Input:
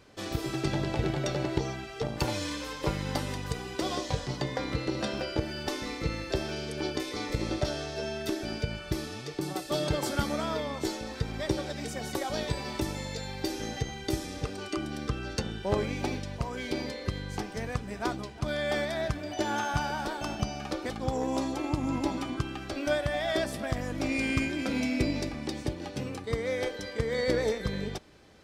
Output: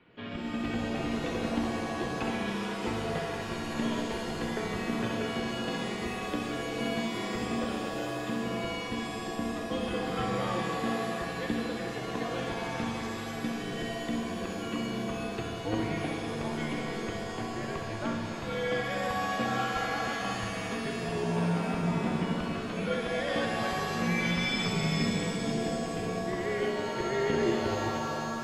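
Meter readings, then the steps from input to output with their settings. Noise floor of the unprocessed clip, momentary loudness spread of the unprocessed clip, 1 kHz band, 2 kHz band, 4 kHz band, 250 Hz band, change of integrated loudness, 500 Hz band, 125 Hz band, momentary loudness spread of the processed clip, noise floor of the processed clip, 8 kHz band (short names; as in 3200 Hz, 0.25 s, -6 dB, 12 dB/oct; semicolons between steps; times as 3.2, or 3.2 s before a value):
-42 dBFS, 6 LU, +2.5 dB, +2.0 dB, -0.5 dB, +1.0 dB, +0.5 dB, -0.5 dB, -2.0 dB, 6 LU, -37 dBFS, -2.0 dB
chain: bell 830 Hz -5 dB 2.3 oct; flutter echo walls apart 11.1 m, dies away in 0.42 s; mistuned SSB -93 Hz 200–3200 Hz; shimmer reverb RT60 3 s, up +7 st, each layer -2 dB, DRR 3.5 dB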